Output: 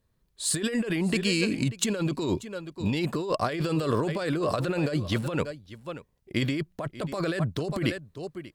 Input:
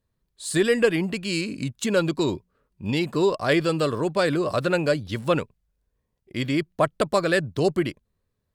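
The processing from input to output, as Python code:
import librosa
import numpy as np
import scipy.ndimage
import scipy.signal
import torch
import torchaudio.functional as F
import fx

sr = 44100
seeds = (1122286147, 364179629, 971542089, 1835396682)

y = x + 10.0 ** (-19.5 / 20.0) * np.pad(x, (int(587 * sr / 1000.0), 0))[:len(x)]
y = fx.over_compress(y, sr, threshold_db=-27.0, ratio=-1.0)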